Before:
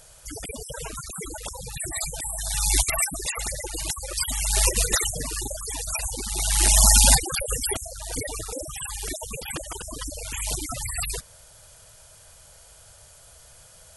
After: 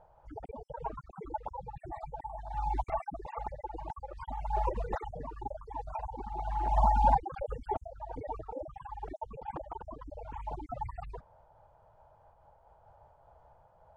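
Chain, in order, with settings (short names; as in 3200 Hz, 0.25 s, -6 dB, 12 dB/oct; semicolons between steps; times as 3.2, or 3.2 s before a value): synth low-pass 860 Hz, resonance Q 5.8; noise-modulated level, depth 60%; gain -5.5 dB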